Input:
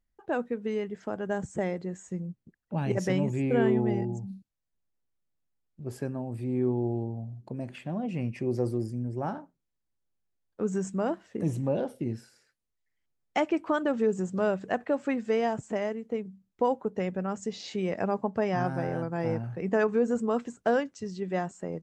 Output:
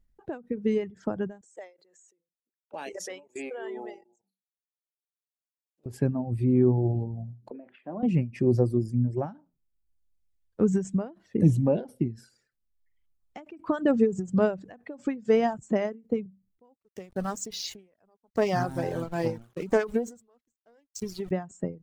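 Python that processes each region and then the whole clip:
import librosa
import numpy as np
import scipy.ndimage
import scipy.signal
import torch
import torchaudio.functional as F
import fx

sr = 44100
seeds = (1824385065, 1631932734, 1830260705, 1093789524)

y = fx.chain(x, sr, fx.highpass(hz=440.0, slope=24),
    fx.high_shelf(hz=3100.0, db=9.0),
    fx.level_steps(step_db=20), at=(1.41, 5.86))
y = fx.chain(y, sr, fx.bessel_highpass(hz=440.0, order=4),
    fx.air_absorb(metres=450.0),
    fx.doubler(ms=41.0, db=-13), at=(7.5, 8.03))
y = fx.chain(y, sr, fx.bass_treble(bass_db=-9, treble_db=12),
    fx.sample_gate(floor_db=-42.0),
    fx.doppler_dist(depth_ms=0.15), at=(16.76, 21.31))
y = fx.dereverb_blind(y, sr, rt60_s=1.2)
y = fx.low_shelf(y, sr, hz=330.0, db=12.0)
y = fx.end_taper(y, sr, db_per_s=170.0)
y = y * librosa.db_to_amplitude(1.5)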